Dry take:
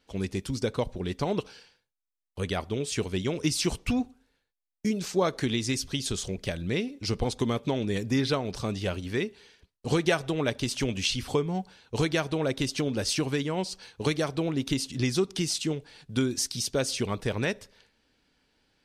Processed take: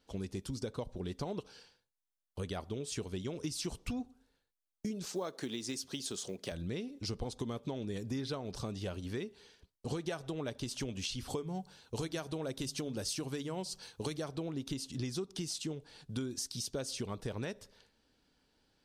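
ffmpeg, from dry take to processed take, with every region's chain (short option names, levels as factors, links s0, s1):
-filter_complex "[0:a]asettb=1/sr,asplit=3[s0][s1][s2];[s0]atrim=end=5.054[s3];[s1]atrim=start=5.05:end=6.52,asetpts=PTS-STARTPTS,afade=t=in:d=0.004:c=qsin,afade=t=out:st=1.466:d=0.004:c=qsin,highpass=220,acrusher=bits=8:mode=log:mix=0:aa=0.000001[s4];[s2]atrim=start=6.516[s5];[s3][s4]acrossfade=d=0.004:c1=hsin:c2=qsin[s6];[s6][s5]acrossfade=d=0.004:c1=qsin:c2=hsin,asettb=1/sr,asplit=3[s7][s8][s9];[s7]atrim=end=11.304[s10];[s8]atrim=start=11.3:end=14.19,asetpts=PTS-STARTPTS,afade=t=in:d=0.004:c=qsin,afade=t=out:st=2.886:d=0.004:c=qsin,highshelf=f=6900:g=8,bandreject=f=73.03:t=h:w=4,bandreject=f=146.06:t=h:w=4[s11];[s9]atrim=start=14.186[s12];[s10][s11]acrossfade=d=0.004:c1=hsin:c2=qsin[s13];[s13][s12]acrossfade=d=0.004:c1=qsin:c2=hsin,equalizer=f=2200:t=o:w=0.89:g=-6,acompressor=threshold=0.0178:ratio=3,volume=0.75"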